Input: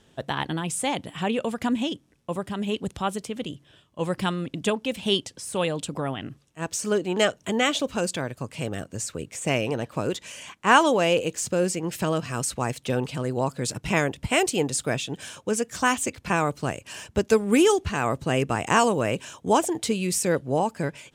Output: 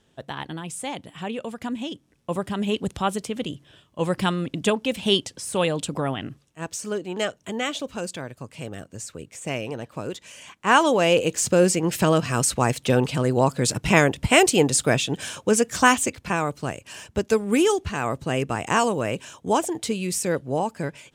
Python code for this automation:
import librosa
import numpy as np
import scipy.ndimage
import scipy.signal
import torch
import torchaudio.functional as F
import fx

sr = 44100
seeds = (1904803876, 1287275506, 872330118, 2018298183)

y = fx.gain(x, sr, db=fx.line((1.79, -5.0), (2.35, 3.0), (6.17, 3.0), (6.93, -4.5), (10.23, -4.5), (11.48, 6.0), (15.85, 6.0), (16.35, -1.0)))